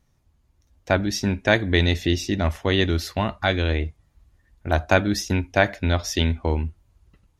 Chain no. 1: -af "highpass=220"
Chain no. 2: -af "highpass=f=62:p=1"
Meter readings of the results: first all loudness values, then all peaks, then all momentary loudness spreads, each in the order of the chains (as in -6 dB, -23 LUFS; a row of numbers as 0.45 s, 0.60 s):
-24.5 LUFS, -23.0 LUFS; -1.5 dBFS, -2.0 dBFS; 9 LU, 7 LU